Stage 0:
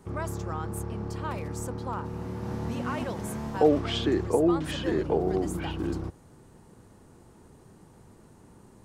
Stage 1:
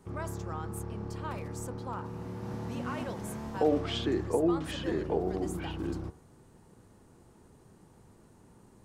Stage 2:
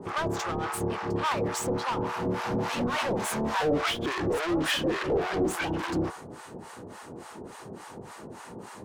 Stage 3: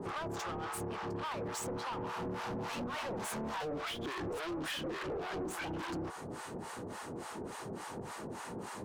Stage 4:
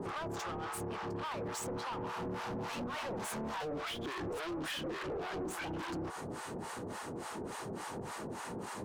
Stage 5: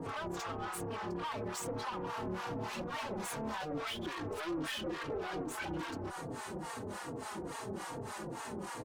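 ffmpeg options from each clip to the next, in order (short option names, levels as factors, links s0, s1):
-af "bandreject=f=75:t=h:w=4,bandreject=f=150:t=h:w=4,bandreject=f=225:t=h:w=4,bandreject=f=300:t=h:w=4,bandreject=f=375:t=h:w=4,bandreject=f=450:t=h:w=4,bandreject=f=525:t=h:w=4,bandreject=f=600:t=h:w=4,bandreject=f=675:t=h:w=4,bandreject=f=750:t=h:w=4,bandreject=f=825:t=h:w=4,bandreject=f=900:t=h:w=4,bandreject=f=975:t=h:w=4,bandreject=f=1050:t=h:w=4,bandreject=f=1125:t=h:w=4,bandreject=f=1200:t=h:w=4,bandreject=f=1275:t=h:w=4,bandreject=f=1350:t=h:w=4,bandreject=f=1425:t=h:w=4,bandreject=f=1500:t=h:w=4,bandreject=f=1575:t=h:w=4,bandreject=f=1650:t=h:w=4,bandreject=f=1725:t=h:w=4,bandreject=f=1800:t=h:w=4,bandreject=f=1875:t=h:w=4,bandreject=f=1950:t=h:w=4,bandreject=f=2025:t=h:w=4,bandreject=f=2100:t=h:w=4,bandreject=f=2175:t=h:w=4,volume=0.631"
-filter_complex "[0:a]asplit=2[s0][s1];[s1]highpass=f=720:p=1,volume=56.2,asoftclip=type=tanh:threshold=0.188[s2];[s0][s2]amix=inputs=2:normalize=0,lowpass=f=3500:p=1,volume=0.501,acrossover=split=710[s3][s4];[s3]aeval=exprs='val(0)*(1-1/2+1/2*cos(2*PI*3.5*n/s))':c=same[s5];[s4]aeval=exprs='val(0)*(1-1/2-1/2*cos(2*PI*3.5*n/s))':c=same[s6];[s5][s6]amix=inputs=2:normalize=0,volume=0.891"
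-af "acompressor=threshold=0.0178:ratio=5,asoftclip=type=tanh:threshold=0.0178,volume=1.12"
-af "alimiter=level_in=5.62:limit=0.0631:level=0:latency=1:release=150,volume=0.178,volume=1.58"
-filter_complex "[0:a]asplit=2[s0][s1];[s1]adelay=3.8,afreqshift=-2.4[s2];[s0][s2]amix=inputs=2:normalize=1,volume=1.41"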